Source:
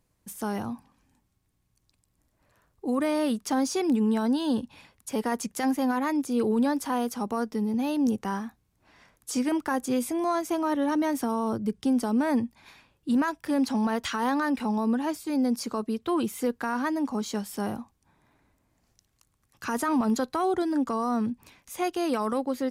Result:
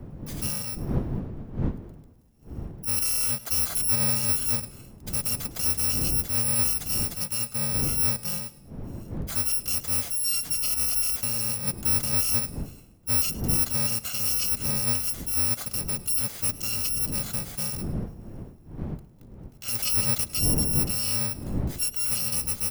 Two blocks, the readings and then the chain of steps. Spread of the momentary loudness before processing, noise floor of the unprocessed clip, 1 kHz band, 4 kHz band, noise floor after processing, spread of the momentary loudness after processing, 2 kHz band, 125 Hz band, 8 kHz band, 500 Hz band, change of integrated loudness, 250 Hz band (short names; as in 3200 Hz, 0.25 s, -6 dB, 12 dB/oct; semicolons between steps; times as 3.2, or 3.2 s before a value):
8 LU, -73 dBFS, -12.5 dB, +10.0 dB, -50 dBFS, 15 LU, -2.0 dB, +11.5 dB, +15.5 dB, -11.0 dB, +3.5 dB, -11.0 dB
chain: FFT order left unsorted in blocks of 128 samples; wind noise 190 Hz -36 dBFS; warbling echo 0.105 s, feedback 41%, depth 51 cents, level -18.5 dB